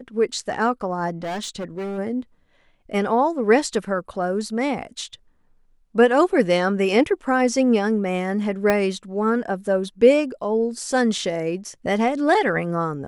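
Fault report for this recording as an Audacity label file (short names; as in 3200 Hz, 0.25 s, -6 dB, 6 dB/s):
1.230000	1.990000	clipped -25 dBFS
8.700000	8.700000	pop -6 dBFS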